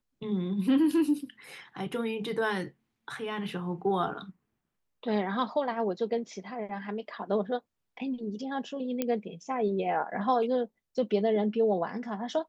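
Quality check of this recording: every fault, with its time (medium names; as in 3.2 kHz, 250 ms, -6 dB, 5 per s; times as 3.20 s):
9.02 s: pop -15 dBFS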